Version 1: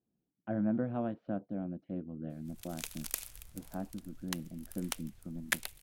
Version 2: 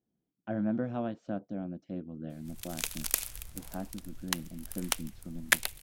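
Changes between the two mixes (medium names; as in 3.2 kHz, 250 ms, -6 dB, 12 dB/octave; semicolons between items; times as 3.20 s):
speech: remove distance through air 400 m; background +7.5 dB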